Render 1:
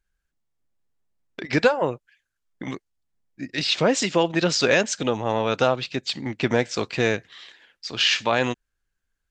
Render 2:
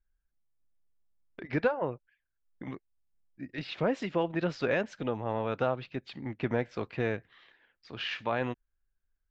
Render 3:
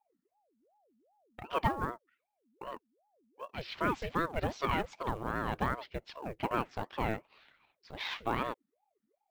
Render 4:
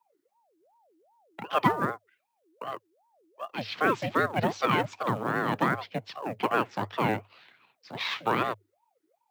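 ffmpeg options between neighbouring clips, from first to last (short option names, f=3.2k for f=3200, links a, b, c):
-af "lowpass=2.1k,lowshelf=f=72:g=10.5,volume=-9dB"
-af "acrusher=bits=7:mode=log:mix=0:aa=0.000001,aeval=exprs='val(0)*sin(2*PI*530*n/s+530*0.6/2.6*sin(2*PI*2.6*n/s))':c=same"
-af "afreqshift=100,volume=6.5dB"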